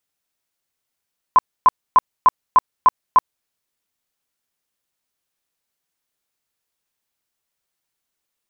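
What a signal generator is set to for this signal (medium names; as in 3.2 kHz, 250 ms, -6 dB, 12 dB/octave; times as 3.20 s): tone bursts 1.02 kHz, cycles 27, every 0.30 s, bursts 7, -6.5 dBFS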